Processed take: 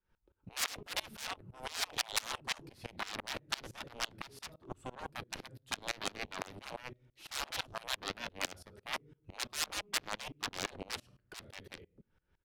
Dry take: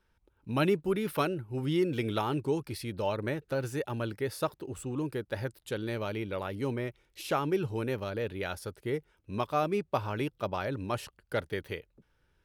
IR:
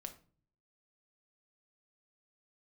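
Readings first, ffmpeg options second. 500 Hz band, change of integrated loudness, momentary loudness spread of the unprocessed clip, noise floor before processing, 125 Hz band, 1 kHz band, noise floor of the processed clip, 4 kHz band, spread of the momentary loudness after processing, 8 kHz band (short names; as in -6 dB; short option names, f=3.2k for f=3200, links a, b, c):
-17.0 dB, -7.0 dB, 8 LU, -73 dBFS, -19.0 dB, -8.0 dB, -79 dBFS, +5.0 dB, 14 LU, +8.0 dB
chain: -filter_complex "[0:a]asplit=2[a][b];[1:a]atrim=start_sample=2205[c];[b][c]afir=irnorm=-1:irlink=0,volume=3dB[d];[a][d]amix=inputs=2:normalize=0,aeval=exprs='0.335*(cos(1*acos(clip(val(0)/0.335,-1,1)))-cos(1*PI/2))+0.0531*(cos(7*acos(clip(val(0)/0.335,-1,1)))-cos(7*PI/2))':c=same,aresample=32000,aresample=44100,aeval=exprs='0.0794*(abs(mod(val(0)/0.0794+3,4)-2)-1)':c=same,aemphasis=mode=reproduction:type=cd,acrossover=split=440|3000[e][f][g];[f]acompressor=threshold=-56dB:ratio=2[h];[e][h][g]amix=inputs=3:normalize=0,afftfilt=real='re*lt(hypot(re,im),0.0178)':imag='im*lt(hypot(re,im),0.0178)':win_size=1024:overlap=0.75,aeval=exprs='val(0)*pow(10,-24*if(lt(mod(-5.9*n/s,1),2*abs(-5.9)/1000),1-mod(-5.9*n/s,1)/(2*abs(-5.9)/1000),(mod(-5.9*n/s,1)-2*abs(-5.9)/1000)/(1-2*abs(-5.9)/1000))/20)':c=same,volume=16dB"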